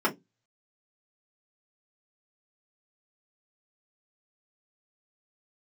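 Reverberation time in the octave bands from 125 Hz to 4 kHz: 0.40, 0.25, 0.20, 0.15, 0.10, 0.15 seconds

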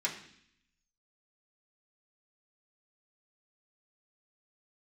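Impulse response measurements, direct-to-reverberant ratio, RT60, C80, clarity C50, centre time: −5.0 dB, 0.65 s, 11.5 dB, 9.0 dB, 21 ms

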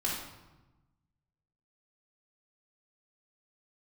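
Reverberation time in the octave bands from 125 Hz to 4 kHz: 1.7, 1.4, 1.1, 1.1, 0.90, 0.75 seconds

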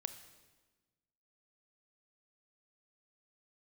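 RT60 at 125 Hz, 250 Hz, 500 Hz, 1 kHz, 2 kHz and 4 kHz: 1.6, 1.6, 1.3, 1.2, 1.2, 1.1 seconds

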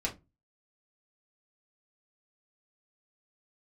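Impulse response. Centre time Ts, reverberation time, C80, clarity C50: 12 ms, 0.20 s, 24.0 dB, 15.5 dB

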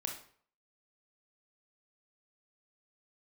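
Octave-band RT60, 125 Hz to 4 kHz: 0.55, 0.45, 0.50, 0.55, 0.45, 0.40 seconds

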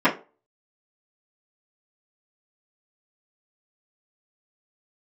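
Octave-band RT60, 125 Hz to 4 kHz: 0.25, 0.30, 0.35, 0.30, 0.25, 0.20 seconds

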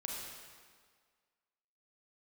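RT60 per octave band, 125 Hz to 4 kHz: 1.5, 1.6, 1.7, 1.8, 1.6, 1.5 seconds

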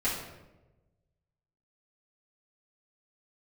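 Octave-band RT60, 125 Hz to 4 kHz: 1.7, 1.3, 1.2, 0.90, 0.80, 0.65 seconds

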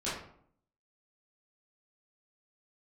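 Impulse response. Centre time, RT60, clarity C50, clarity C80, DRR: 51 ms, 0.65 s, 2.5 dB, 7.0 dB, −11.5 dB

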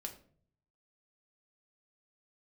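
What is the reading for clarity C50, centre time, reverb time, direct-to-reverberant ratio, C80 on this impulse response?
11.5 dB, 12 ms, 0.50 s, 2.0 dB, 15.0 dB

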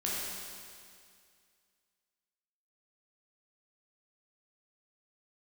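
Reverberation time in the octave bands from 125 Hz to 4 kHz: 2.2, 2.2, 2.2, 2.2, 2.2, 2.2 seconds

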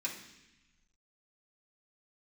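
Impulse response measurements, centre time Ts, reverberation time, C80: 27 ms, 0.95 s, 9.5 dB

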